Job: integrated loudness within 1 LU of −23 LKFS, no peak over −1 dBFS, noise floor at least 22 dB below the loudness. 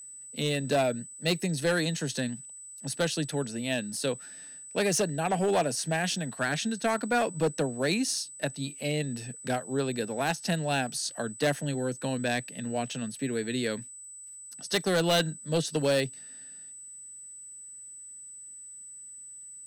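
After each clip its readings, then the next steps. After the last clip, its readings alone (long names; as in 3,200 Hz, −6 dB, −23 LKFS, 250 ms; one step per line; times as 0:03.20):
share of clipped samples 0.9%; peaks flattened at −20.0 dBFS; interfering tone 8,000 Hz; level of the tone −43 dBFS; integrated loudness −29.5 LKFS; sample peak −20.0 dBFS; target loudness −23.0 LKFS
→ clipped peaks rebuilt −20 dBFS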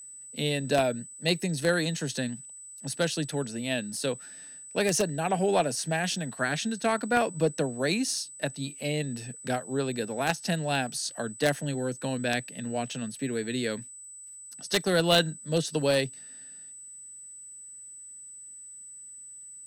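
share of clipped samples 0.0%; interfering tone 8,000 Hz; level of the tone −43 dBFS
→ notch filter 8,000 Hz, Q 30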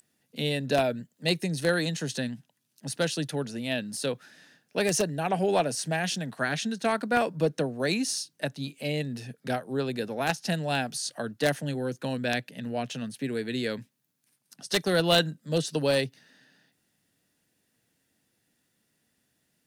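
interfering tone none found; integrated loudness −29.0 LKFS; sample peak −10.5 dBFS; target loudness −23.0 LKFS
→ level +6 dB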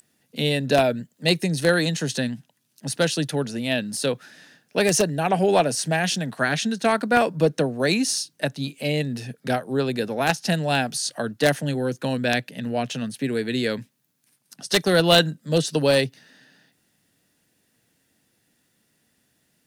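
integrated loudness −23.0 LKFS; sample peak −4.5 dBFS; background noise floor −69 dBFS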